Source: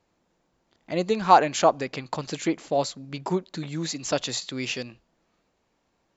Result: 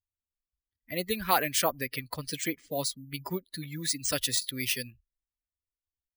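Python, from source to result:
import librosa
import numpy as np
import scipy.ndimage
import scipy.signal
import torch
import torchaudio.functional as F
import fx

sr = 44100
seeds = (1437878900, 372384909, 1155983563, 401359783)

y = fx.bin_expand(x, sr, power=2.0)
y = np.repeat(scipy.signal.resample_poly(y, 1, 3), 3)[:len(y)]
y = fx.spectral_comp(y, sr, ratio=2.0)
y = F.gain(torch.from_numpy(y), -6.0).numpy()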